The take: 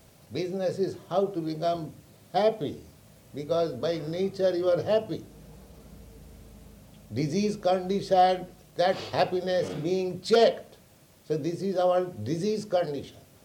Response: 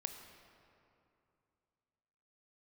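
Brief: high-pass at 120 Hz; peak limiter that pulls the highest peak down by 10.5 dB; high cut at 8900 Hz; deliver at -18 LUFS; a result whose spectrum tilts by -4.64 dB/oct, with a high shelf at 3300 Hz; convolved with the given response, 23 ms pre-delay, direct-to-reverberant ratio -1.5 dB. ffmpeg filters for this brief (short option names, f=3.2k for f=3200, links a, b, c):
-filter_complex "[0:a]highpass=120,lowpass=8.9k,highshelf=f=3.3k:g=3,alimiter=limit=-19.5dB:level=0:latency=1,asplit=2[a][b];[1:a]atrim=start_sample=2205,adelay=23[c];[b][c]afir=irnorm=-1:irlink=0,volume=3.5dB[d];[a][d]amix=inputs=2:normalize=0,volume=9dB"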